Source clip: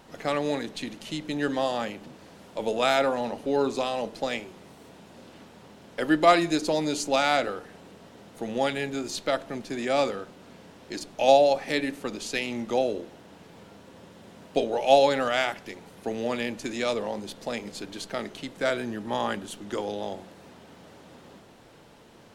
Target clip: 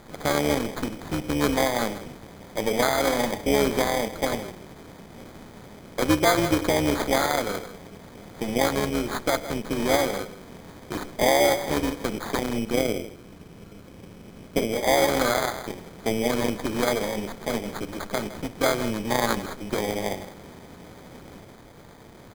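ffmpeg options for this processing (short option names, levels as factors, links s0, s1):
-filter_complex "[0:a]lowshelf=f=150:g=8,tremolo=f=220:d=0.788,asettb=1/sr,asplit=3[s0][s1][s2];[s0]atrim=end=12.584[s3];[s1]atrim=start=12.58:end=14.83,asetpts=PTS-STARTPTS,afade=t=in:d=0.004:c=qsin,afade=t=out:st=2.246:d=0.004:c=qsin,equalizer=f=920:t=o:w=0.82:g=-14.5[s4];[s2]atrim=start=14.826[s5];[s3][s4]acrossfade=d=0.004:c1=hsin:c2=qsin[s6];[s6][s5]acrossfade=d=0.004:c1=qsin:c2=hsin,asplit=2[s7][s8];[s8]adelay=160,highpass=300,lowpass=3400,asoftclip=type=hard:threshold=0.188,volume=0.2[s9];[s7][s9]amix=inputs=2:normalize=0,alimiter=limit=0.168:level=0:latency=1:release=214,acrusher=samples=16:mix=1:aa=0.000001,volume=2.24"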